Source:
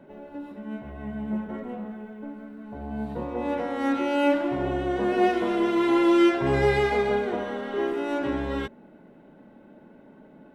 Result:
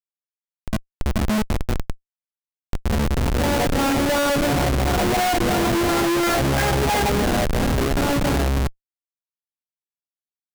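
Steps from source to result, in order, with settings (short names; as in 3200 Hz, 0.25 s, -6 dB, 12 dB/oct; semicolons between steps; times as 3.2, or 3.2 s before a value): LFO low-pass sine 2.9 Hz 390–2100 Hz; comb 1.3 ms, depth 68%; Schmitt trigger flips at -25.5 dBFS; gain +6.5 dB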